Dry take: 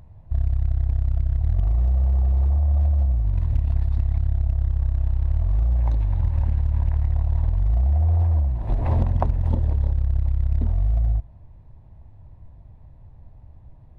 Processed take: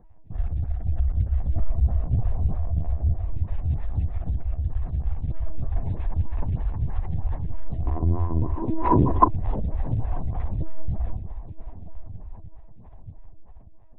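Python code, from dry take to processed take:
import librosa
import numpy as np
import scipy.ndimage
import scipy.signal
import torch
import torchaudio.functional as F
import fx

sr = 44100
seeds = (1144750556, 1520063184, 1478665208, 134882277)

y = fx.low_shelf(x, sr, hz=87.0, db=6.0, at=(0.91, 1.95))
y = fx.doubler(y, sr, ms=46.0, db=-12.0)
y = fx.echo_diffused(y, sr, ms=1025, feedback_pct=41, wet_db=-10.5)
y = fx.lpc_vocoder(y, sr, seeds[0], excitation='pitch_kept', order=16)
y = fx.small_body(y, sr, hz=(330.0, 1000.0), ring_ms=25, db=18, at=(7.86, 9.28))
y = fx.stagger_phaser(y, sr, hz=3.2)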